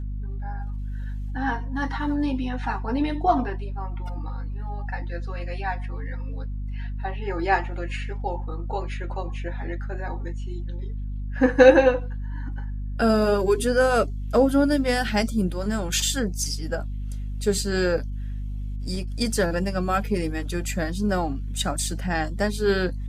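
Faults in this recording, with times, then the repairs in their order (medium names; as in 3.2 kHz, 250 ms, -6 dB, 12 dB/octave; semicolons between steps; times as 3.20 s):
hum 50 Hz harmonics 5 -30 dBFS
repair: de-hum 50 Hz, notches 5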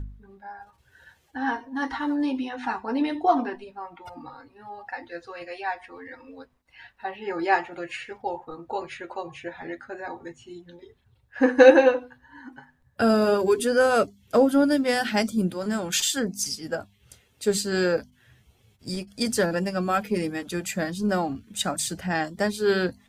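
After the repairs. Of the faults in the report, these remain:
nothing left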